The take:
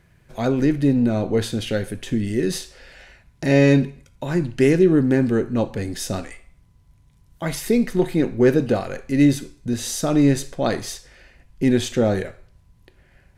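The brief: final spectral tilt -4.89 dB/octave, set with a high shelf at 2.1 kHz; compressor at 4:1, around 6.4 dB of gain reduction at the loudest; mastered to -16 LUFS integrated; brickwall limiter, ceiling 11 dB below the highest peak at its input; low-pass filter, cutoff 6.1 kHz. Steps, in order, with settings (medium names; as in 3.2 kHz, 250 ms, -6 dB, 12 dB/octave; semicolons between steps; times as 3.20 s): low-pass 6.1 kHz; treble shelf 2.1 kHz +5 dB; compression 4:1, threshold -18 dBFS; trim +14 dB; peak limiter -7 dBFS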